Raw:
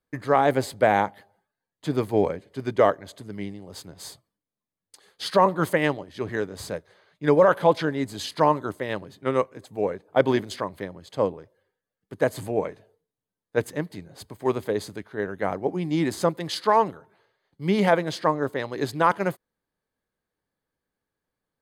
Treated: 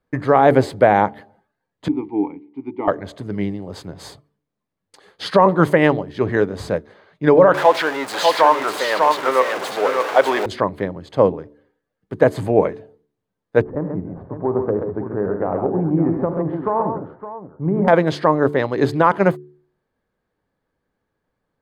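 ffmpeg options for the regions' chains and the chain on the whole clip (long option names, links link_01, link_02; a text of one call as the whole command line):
ffmpeg -i in.wav -filter_complex "[0:a]asettb=1/sr,asplit=3[link_01][link_02][link_03];[link_01]atrim=end=1.884[link_04];[link_02]atrim=start=1.88:end=2.88,asetpts=PTS-STARTPTS,afade=type=in:duration=0.004:curve=qsin,afade=type=out:start_time=0.996:duration=0.004:curve=qsin,asplit=3[link_05][link_06][link_07];[link_05]bandpass=frequency=300:width_type=q:width=8,volume=0dB[link_08];[link_06]bandpass=frequency=870:width_type=q:width=8,volume=-6dB[link_09];[link_07]bandpass=frequency=2240:width_type=q:width=8,volume=-9dB[link_10];[link_08][link_09][link_10]amix=inputs=3:normalize=0,adynamicsmooth=sensitivity=7:basefreq=7100[link_11];[link_03]atrim=start=2.876[link_12];[link_04][link_11]acrossfade=duration=0.004:curve1=hsin:curve2=qsin[link_13];[link_13][link_12]acrossfade=duration=0.004:curve1=qsin:curve2=hsin,asettb=1/sr,asplit=3[link_14][link_15][link_16];[link_14]atrim=end=7.544[link_17];[link_15]atrim=start=7.54:end=10.46,asetpts=PTS-STARTPTS,afade=type=in:duration=0.004:curve=qsin,afade=type=out:start_time=2.916:duration=0.004:curve=qsin,aeval=exprs='val(0)+0.5*0.0531*sgn(val(0))':channel_layout=same,highpass=690,aecho=1:1:597:0.596,atrim=end_sample=128772[link_18];[link_16]atrim=start=10.456[link_19];[link_17][link_18]acrossfade=duration=0.004:curve1=hsin:curve2=qsin[link_20];[link_20][link_19]acrossfade=duration=0.004:curve1=qsin:curve2=hsin,asettb=1/sr,asplit=3[link_21][link_22][link_23];[link_21]atrim=end=13.614[link_24];[link_22]atrim=start=13.61:end=17.88,asetpts=PTS-STARTPTS,afade=type=in:duration=0.004:curve=qsin,afade=type=out:start_time=4.266:duration=0.004:curve=qsin,lowpass=frequency=1200:width=0.5412,lowpass=frequency=1200:width=1.3066,acompressor=threshold=-26dB:ratio=6:attack=3.2:release=140:knee=1:detection=peak,aecho=1:1:54|80|98|134|563:0.178|0.2|0.237|0.501|0.251,atrim=end_sample=188307[link_25];[link_23]atrim=start=17.876[link_26];[link_24][link_25]acrossfade=duration=0.004:curve1=hsin:curve2=qsin[link_27];[link_27][link_26]acrossfade=duration=0.004:curve1=qsin:curve2=hsin,lowpass=frequency=1600:poles=1,bandreject=frequency=73.11:width_type=h:width=4,bandreject=frequency=146.22:width_type=h:width=4,bandreject=frequency=219.33:width_type=h:width=4,bandreject=frequency=292.44:width_type=h:width=4,bandreject=frequency=365.55:width_type=h:width=4,bandreject=frequency=438.66:width_type=h:width=4,alimiter=level_in=12dB:limit=-1dB:release=50:level=0:latency=1,volume=-1dB" out.wav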